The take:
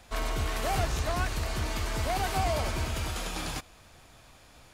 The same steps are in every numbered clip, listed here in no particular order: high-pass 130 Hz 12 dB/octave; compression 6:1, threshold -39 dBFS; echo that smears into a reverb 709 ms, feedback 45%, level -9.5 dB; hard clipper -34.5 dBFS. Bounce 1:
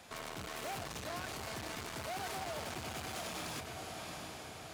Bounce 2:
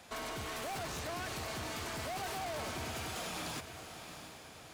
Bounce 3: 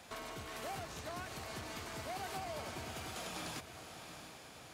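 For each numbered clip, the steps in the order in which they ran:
echo that smears into a reverb > hard clipper > compression > high-pass; high-pass > hard clipper > compression > echo that smears into a reverb; compression > echo that smears into a reverb > hard clipper > high-pass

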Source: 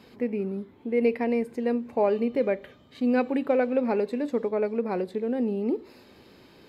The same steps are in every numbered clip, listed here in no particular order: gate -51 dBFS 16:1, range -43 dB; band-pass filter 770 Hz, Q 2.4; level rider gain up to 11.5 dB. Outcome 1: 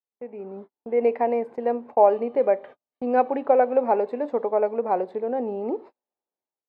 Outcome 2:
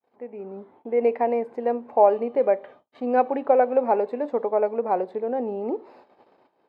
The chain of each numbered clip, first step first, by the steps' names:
band-pass filter > gate > level rider; gate > band-pass filter > level rider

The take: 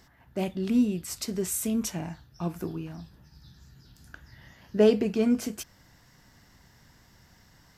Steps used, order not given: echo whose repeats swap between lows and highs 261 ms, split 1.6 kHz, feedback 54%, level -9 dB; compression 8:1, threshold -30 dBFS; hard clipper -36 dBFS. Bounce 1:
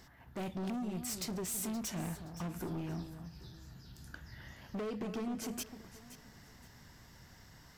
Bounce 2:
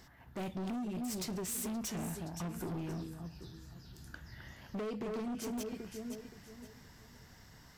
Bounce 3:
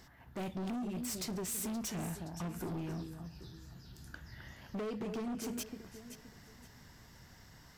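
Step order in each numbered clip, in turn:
compression > hard clipper > echo whose repeats swap between lows and highs; echo whose repeats swap between lows and highs > compression > hard clipper; compression > echo whose repeats swap between lows and highs > hard clipper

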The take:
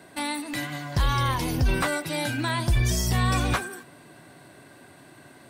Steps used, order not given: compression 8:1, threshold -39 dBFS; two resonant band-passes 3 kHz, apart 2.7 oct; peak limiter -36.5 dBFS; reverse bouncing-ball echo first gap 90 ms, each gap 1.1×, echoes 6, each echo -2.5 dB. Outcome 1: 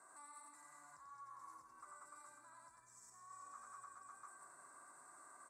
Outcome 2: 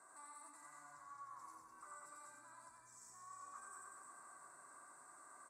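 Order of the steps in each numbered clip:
reverse bouncing-ball echo > compression > peak limiter > two resonant band-passes; peak limiter > reverse bouncing-ball echo > compression > two resonant band-passes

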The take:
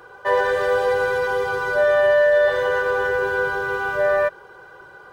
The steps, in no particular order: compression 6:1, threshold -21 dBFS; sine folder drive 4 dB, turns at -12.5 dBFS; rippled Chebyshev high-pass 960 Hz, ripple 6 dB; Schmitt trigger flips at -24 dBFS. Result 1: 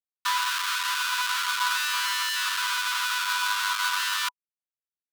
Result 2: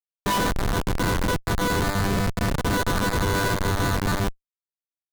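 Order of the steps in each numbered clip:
compression > Schmitt trigger > rippled Chebyshev high-pass > sine folder; rippled Chebyshev high-pass > compression > Schmitt trigger > sine folder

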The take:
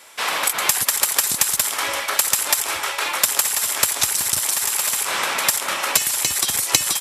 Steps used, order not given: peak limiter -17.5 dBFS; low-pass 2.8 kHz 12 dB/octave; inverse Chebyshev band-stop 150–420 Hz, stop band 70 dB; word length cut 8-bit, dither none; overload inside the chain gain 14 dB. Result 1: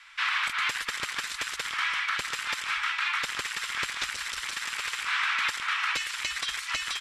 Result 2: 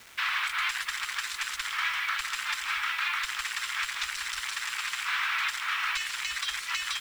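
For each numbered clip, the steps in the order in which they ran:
word length cut > inverse Chebyshev band-stop > overload inside the chain > low-pass > peak limiter; overload inside the chain > low-pass > peak limiter > inverse Chebyshev band-stop > word length cut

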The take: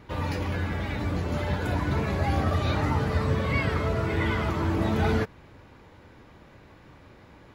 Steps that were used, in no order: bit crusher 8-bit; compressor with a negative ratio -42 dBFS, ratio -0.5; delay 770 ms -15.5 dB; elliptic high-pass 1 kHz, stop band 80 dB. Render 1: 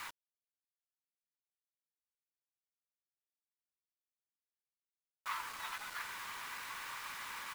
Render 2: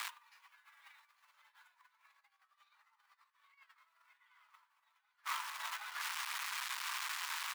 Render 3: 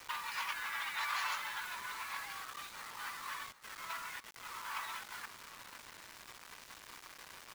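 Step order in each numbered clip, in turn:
delay > compressor with a negative ratio > elliptic high-pass > bit crusher; bit crusher > delay > compressor with a negative ratio > elliptic high-pass; elliptic high-pass > compressor with a negative ratio > bit crusher > delay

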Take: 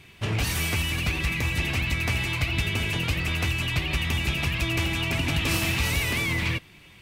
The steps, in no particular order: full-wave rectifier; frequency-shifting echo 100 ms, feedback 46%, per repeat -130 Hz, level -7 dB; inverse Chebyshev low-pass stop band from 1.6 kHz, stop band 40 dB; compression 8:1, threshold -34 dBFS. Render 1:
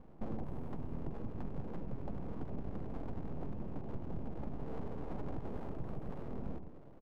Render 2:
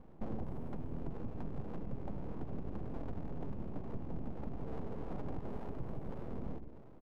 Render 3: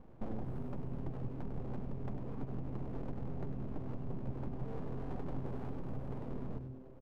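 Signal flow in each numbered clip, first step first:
compression > frequency-shifting echo > inverse Chebyshev low-pass > full-wave rectifier; compression > inverse Chebyshev low-pass > frequency-shifting echo > full-wave rectifier; compression > inverse Chebyshev low-pass > full-wave rectifier > frequency-shifting echo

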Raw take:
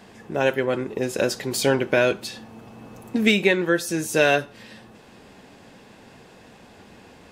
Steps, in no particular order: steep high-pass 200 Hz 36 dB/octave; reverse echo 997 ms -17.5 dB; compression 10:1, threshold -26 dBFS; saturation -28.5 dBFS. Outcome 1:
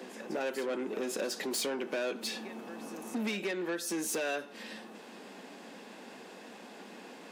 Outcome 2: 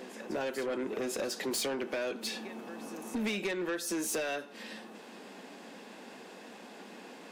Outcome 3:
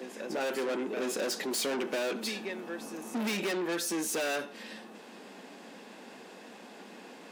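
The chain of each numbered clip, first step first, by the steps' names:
compression > reverse echo > saturation > steep high-pass; steep high-pass > compression > reverse echo > saturation; reverse echo > saturation > steep high-pass > compression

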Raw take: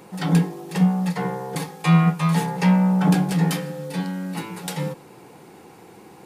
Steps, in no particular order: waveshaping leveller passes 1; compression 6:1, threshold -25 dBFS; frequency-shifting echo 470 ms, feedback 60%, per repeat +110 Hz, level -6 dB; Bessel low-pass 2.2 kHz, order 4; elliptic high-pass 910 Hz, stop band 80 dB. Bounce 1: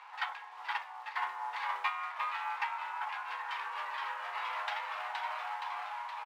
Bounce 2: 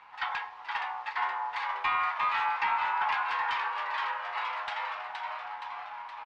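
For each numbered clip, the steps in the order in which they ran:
Bessel low-pass > frequency-shifting echo > compression > waveshaping leveller > elliptic high-pass; frequency-shifting echo > elliptic high-pass > compression > waveshaping leveller > Bessel low-pass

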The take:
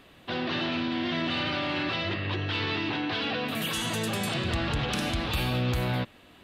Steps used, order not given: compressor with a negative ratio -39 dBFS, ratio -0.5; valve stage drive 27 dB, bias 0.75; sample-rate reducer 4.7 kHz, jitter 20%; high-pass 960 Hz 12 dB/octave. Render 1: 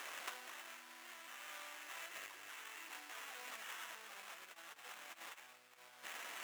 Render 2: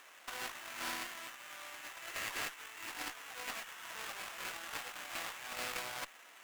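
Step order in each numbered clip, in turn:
sample-rate reducer > compressor with a negative ratio > valve stage > high-pass; sample-rate reducer > high-pass > compressor with a negative ratio > valve stage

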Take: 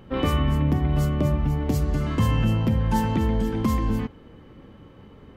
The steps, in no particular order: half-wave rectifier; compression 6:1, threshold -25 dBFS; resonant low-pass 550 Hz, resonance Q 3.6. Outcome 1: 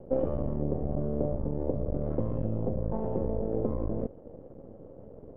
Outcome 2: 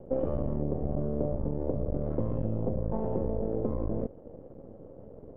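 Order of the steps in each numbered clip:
compression > half-wave rectifier > resonant low-pass; half-wave rectifier > resonant low-pass > compression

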